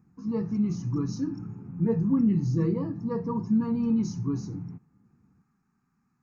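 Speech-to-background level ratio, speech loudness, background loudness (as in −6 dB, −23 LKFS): 10.5 dB, −28.0 LKFS, −38.5 LKFS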